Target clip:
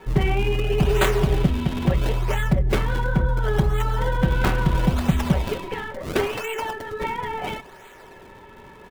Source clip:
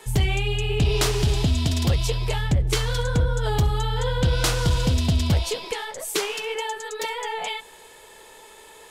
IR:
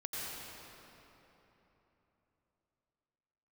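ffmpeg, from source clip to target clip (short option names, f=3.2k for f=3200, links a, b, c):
-filter_complex "[0:a]aecho=1:1:5.3:0.99,acrossover=split=660|2600[a][b][c];[c]acrusher=samples=41:mix=1:aa=0.000001:lfo=1:lforange=65.6:lforate=0.73[d];[a][b][d]amix=inputs=3:normalize=0"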